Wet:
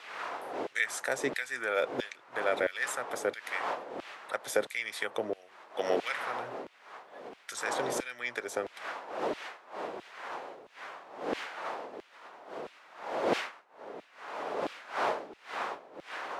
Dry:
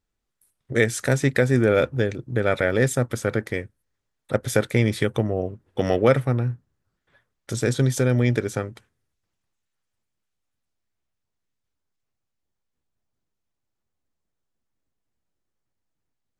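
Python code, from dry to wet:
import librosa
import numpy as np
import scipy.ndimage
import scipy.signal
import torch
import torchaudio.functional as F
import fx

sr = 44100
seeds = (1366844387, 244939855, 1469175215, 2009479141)

y = fx.dmg_wind(x, sr, seeds[0], corner_hz=540.0, level_db=-26.0)
y = fx.filter_lfo_highpass(y, sr, shape='saw_down', hz=1.5, low_hz=360.0, high_hz=2800.0, q=1.2)
y = fx.band_squash(y, sr, depth_pct=40)
y = F.gain(torch.from_numpy(y), -6.0).numpy()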